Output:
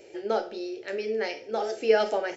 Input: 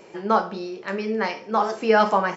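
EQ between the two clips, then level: peaking EQ 100 Hz +4 dB 1 oct; static phaser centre 440 Hz, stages 4; -1.5 dB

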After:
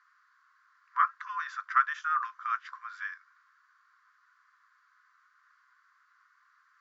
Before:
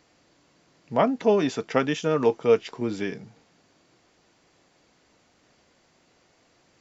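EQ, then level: brick-wall FIR high-pass 1 kHz; distance through air 120 m; resonant high shelf 2 kHz -9.5 dB, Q 3; +1.5 dB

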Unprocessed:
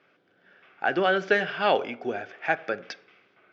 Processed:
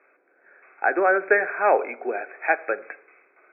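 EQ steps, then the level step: high-pass 340 Hz 24 dB/octave; brick-wall FIR low-pass 2.6 kHz; +4.0 dB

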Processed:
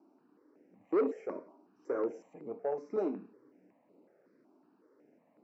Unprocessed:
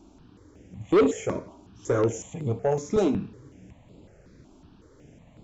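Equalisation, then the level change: boxcar filter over 13 samples; high-pass 260 Hz 24 dB/octave; -9.0 dB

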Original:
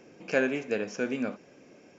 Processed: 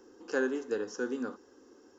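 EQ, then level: peaking EQ 140 Hz -11.5 dB 0.42 oct; static phaser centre 630 Hz, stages 6; 0.0 dB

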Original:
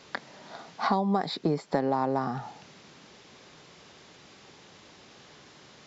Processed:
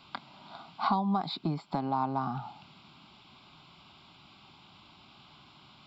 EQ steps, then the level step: static phaser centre 1.8 kHz, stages 6; 0.0 dB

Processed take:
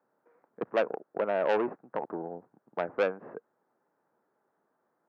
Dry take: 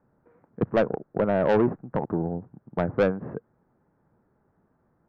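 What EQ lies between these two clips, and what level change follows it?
high-pass 440 Hz 12 dB/octave; dynamic bell 2.6 kHz, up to +5 dB, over -55 dBFS, Q 4.5; -3.0 dB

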